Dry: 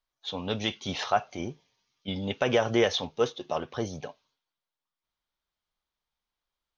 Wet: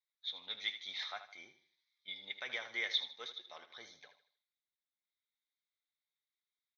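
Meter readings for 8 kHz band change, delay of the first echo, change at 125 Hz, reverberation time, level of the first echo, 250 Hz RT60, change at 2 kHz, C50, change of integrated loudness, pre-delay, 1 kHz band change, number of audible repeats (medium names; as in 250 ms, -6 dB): no reading, 78 ms, under -35 dB, no reverb, -11.5 dB, no reverb, -6.5 dB, no reverb, -10.5 dB, no reverb, -21.0 dB, 3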